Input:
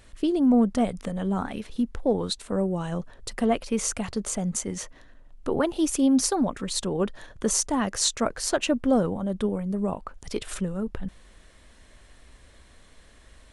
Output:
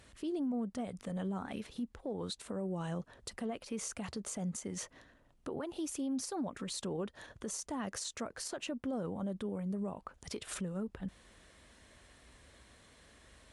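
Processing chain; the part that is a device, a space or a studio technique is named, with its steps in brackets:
podcast mastering chain (high-pass filter 67 Hz 12 dB per octave; de-essing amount 35%; downward compressor 2.5 to 1, threshold −32 dBFS, peak gain reduction 10.5 dB; brickwall limiter −26.5 dBFS, peak gain reduction 9 dB; level −3.5 dB; MP3 96 kbit/s 32,000 Hz)

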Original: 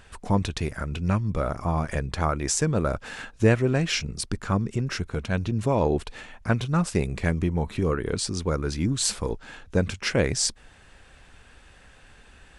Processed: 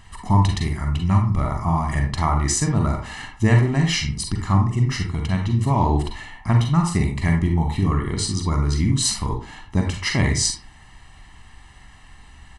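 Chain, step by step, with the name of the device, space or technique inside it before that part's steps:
microphone above a desk (comb filter 1 ms, depth 88%; convolution reverb RT60 0.40 s, pre-delay 37 ms, DRR 2 dB)

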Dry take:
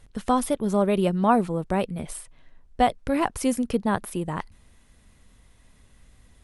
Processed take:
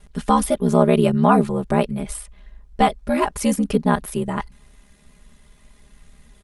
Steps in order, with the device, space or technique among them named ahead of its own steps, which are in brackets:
ring-modulated robot voice (ring modulation 35 Hz; comb filter 4.9 ms, depth 96%)
level +5 dB

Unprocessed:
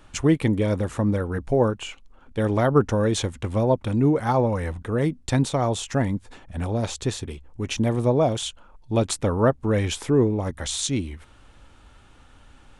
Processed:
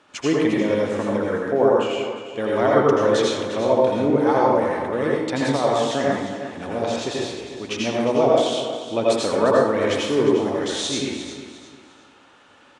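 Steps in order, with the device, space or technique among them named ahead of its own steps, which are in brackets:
dynamic equaliser 7,200 Hz, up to −4 dB, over −45 dBFS, Q 2.5
supermarket ceiling speaker (band-pass filter 280–6,600 Hz; convolution reverb RT60 0.90 s, pre-delay 76 ms, DRR −4 dB)
repeating echo 353 ms, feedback 32%, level −11.5 dB

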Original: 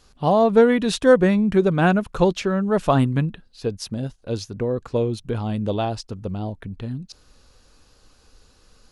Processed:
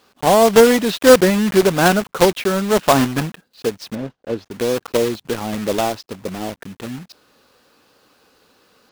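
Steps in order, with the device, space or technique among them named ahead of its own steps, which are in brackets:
early digital voice recorder (band-pass filter 230–3,600 Hz; one scale factor per block 3 bits)
0:03.95–0:04.51: low-pass filter 1,200 Hz 6 dB per octave
level +5 dB

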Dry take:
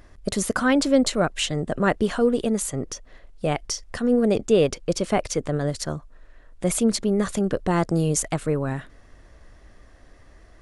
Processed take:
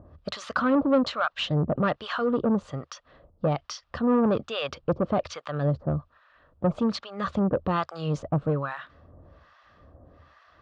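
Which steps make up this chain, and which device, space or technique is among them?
guitar amplifier with harmonic tremolo (two-band tremolo in antiphase 1.2 Hz, depth 100%, crossover 840 Hz; soft clipping −21.5 dBFS, distortion −11 dB; loudspeaker in its box 78–4,100 Hz, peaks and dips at 78 Hz +9 dB, 140 Hz +5 dB, 390 Hz −4 dB, 560 Hz +4 dB, 1,200 Hz +8 dB, 2,100 Hz −7 dB)
level +3.5 dB

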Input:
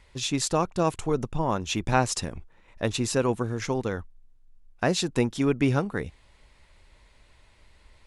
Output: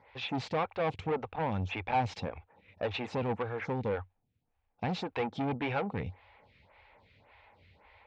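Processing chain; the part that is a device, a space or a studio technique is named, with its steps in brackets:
vibe pedal into a guitar amplifier (phaser with staggered stages 1.8 Hz; tube saturation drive 31 dB, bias 0.2; loudspeaker in its box 85–3,700 Hz, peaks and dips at 93 Hz +9 dB, 350 Hz −6 dB, 490 Hz +5 dB, 810 Hz +10 dB, 2,300 Hz +6 dB)
level +1.5 dB

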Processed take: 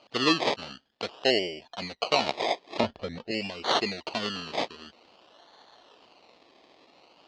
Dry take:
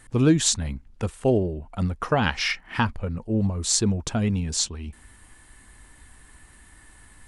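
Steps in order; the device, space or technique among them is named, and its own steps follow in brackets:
circuit-bent sampling toy (sample-and-hold swept by an LFO 24×, swing 60% 0.49 Hz; loudspeaker in its box 400–5,600 Hz, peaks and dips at 690 Hz +3 dB, 1,600 Hz −4 dB, 2,900 Hz +8 dB, 4,300 Hz +10 dB)
0:02.80–0:03.31: spectral tilt −3 dB per octave
level −1.5 dB

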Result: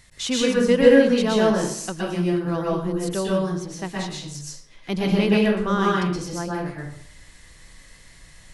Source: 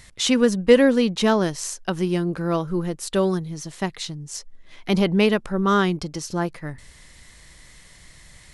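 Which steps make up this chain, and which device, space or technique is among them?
bathroom (convolution reverb RT60 0.65 s, pre-delay 112 ms, DRR −4.5 dB)
level −6 dB

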